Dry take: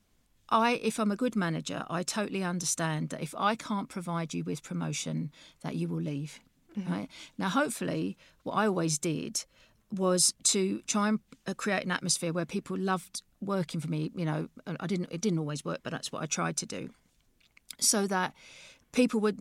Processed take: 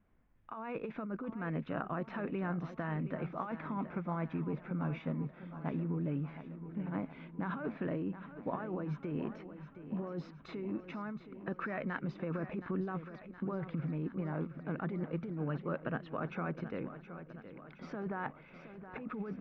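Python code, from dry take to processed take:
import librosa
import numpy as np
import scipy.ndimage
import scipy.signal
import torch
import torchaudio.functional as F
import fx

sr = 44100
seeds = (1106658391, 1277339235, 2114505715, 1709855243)

p1 = scipy.signal.sosfilt(scipy.signal.cheby2(4, 70, 8200.0, 'lowpass', fs=sr, output='sos'), x)
p2 = fx.over_compress(p1, sr, threshold_db=-33.0, ratio=-1.0)
p3 = p2 + fx.echo_feedback(p2, sr, ms=719, feedback_pct=59, wet_db=-12, dry=0)
y = p3 * librosa.db_to_amplitude(-4.0)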